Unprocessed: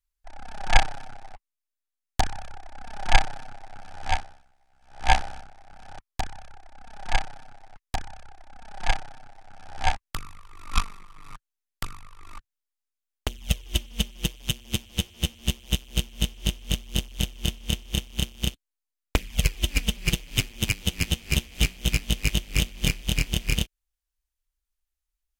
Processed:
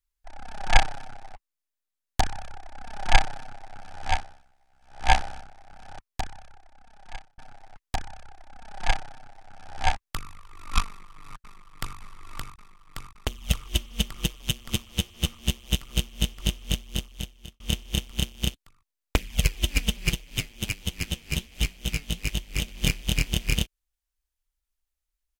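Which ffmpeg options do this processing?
ffmpeg -i in.wav -filter_complex "[0:a]asplit=2[link_01][link_02];[link_02]afade=type=in:start_time=10.87:duration=0.01,afade=type=out:start_time=11.98:duration=0.01,aecho=0:1:570|1140|1710|2280|2850|3420|3990|4560|5130|5700|6270|6840:0.668344|0.534675|0.42774|0.342192|0.273754|0.219003|0.175202|0.140162|0.11213|0.0897036|0.0717629|0.0574103[link_03];[link_01][link_03]amix=inputs=2:normalize=0,asettb=1/sr,asplit=3[link_04][link_05][link_06];[link_04]atrim=end=20.124[link_07];[link_05]atrim=start=20.12:end=22.68,asetpts=PTS-STARTPTS,afade=type=in:duration=0.004:curve=qsin,afade=type=out:start_time=2.556:duration=0.004:curve=qsin,flanger=delay=0.9:depth=6.1:regen=77:speed=1.3:shape=sinusoidal[link_08];[link_06]atrim=start=22.676[link_09];[link_07][link_08]acrossfade=duration=0.004:curve1=hsin:curve2=qsin[link_10];[link_10][link_09]acrossfade=duration=0.004:curve1=qsin:curve2=hsin,asplit=3[link_11][link_12][link_13];[link_11]atrim=end=7.38,asetpts=PTS-STARTPTS,afade=type=out:start_time=5.97:duration=1.41[link_14];[link_12]atrim=start=7.38:end=17.6,asetpts=PTS-STARTPTS,afade=type=in:duration=0.004:curve=hsin,afade=type=out:start_time=9.3:duration=0.92[link_15];[link_13]atrim=start=17.6,asetpts=PTS-STARTPTS,afade=type=in:duration=0.004:curve=hsin[link_16];[link_14][link_15][link_16]concat=n=3:v=0:a=1" out.wav

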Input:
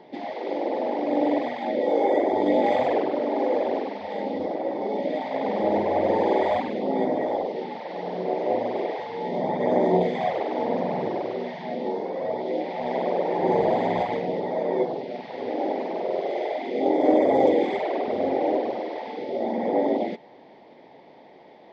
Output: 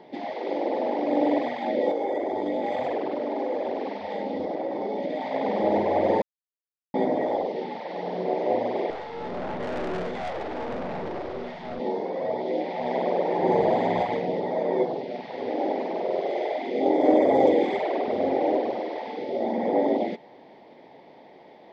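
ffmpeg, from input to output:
ffmpeg -i in.wav -filter_complex "[0:a]asettb=1/sr,asplit=3[link_01][link_02][link_03];[link_01]atrim=end=1.914[link_04];[link_02]atrim=start=1.91:end=5.32,asetpts=PTS-STARTPTS,afade=type=in:duration=0.004:curve=qsin,afade=type=out:start_time=3.406:duration=0.004:curve=qsin,acompressor=threshold=-25dB:ratio=3:attack=3.2:release=140:knee=1:detection=peak[link_05];[link_03]atrim=start=5.316[link_06];[link_04][link_05]acrossfade=duration=0.004:curve1=hsin:curve2=qsin[link_07];[link_07][link_06]acrossfade=duration=0.004:curve1=qsin:curve2=hsin,asettb=1/sr,asplit=3[link_08][link_09][link_10];[link_08]atrim=end=8.904[link_11];[link_09]atrim=start=8.9:end=11.8,asetpts=PTS-STARTPTS,afade=type=in:duration=0.004:curve=qsin,afade=type=out:start_time=2.896:duration=0.004:curve=qsin,aeval=exprs='(tanh(25.1*val(0)+0.55)-tanh(0.55))/25.1':channel_layout=same[link_12];[link_10]atrim=start=11.796[link_13];[link_11][link_12]acrossfade=duration=0.004:curve1=hsin:curve2=qsin[link_14];[link_14][link_13]acrossfade=duration=0.004:curve1=qsin:curve2=hsin,asplit=3[link_15][link_16][link_17];[link_15]atrim=end=6.22,asetpts=PTS-STARTPTS,afade=type=out:start_time=6.216:duration=0.004:curve=hsin[link_18];[link_16]atrim=start=6.22:end=6.94,asetpts=PTS-STARTPTS,volume=0[link_19];[link_17]atrim=start=6.94,asetpts=PTS-STARTPTS,afade=type=in:duration=0.004:curve=hsin[link_20];[link_18][link_19][link_20]concat=n=3:v=0:a=1" out.wav

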